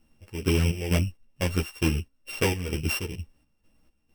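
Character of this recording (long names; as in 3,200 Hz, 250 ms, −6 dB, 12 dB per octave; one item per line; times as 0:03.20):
a buzz of ramps at a fixed pitch in blocks of 16 samples
chopped level 2.2 Hz, depth 65%, duty 55%
a shimmering, thickened sound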